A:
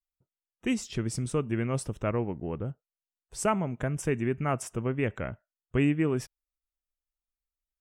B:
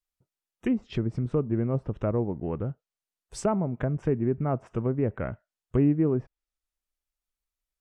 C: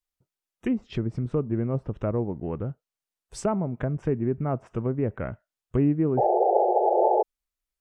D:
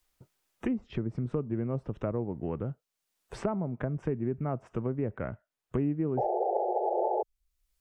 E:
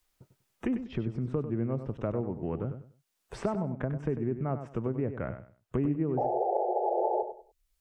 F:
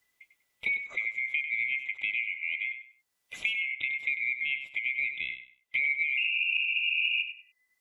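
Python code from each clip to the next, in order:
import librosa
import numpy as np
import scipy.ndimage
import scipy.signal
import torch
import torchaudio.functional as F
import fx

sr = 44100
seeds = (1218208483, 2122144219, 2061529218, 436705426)

y1 = fx.env_lowpass_down(x, sr, base_hz=780.0, full_db=-26.0)
y1 = y1 * librosa.db_to_amplitude(3.0)
y2 = fx.spec_paint(y1, sr, seeds[0], shape='noise', start_s=6.17, length_s=1.06, low_hz=350.0, high_hz=880.0, level_db=-21.0)
y3 = fx.band_squash(y2, sr, depth_pct=70)
y3 = y3 * librosa.db_to_amplitude(-6.5)
y4 = fx.echo_feedback(y3, sr, ms=97, feedback_pct=25, wet_db=-10)
y5 = fx.band_swap(y4, sr, width_hz=2000)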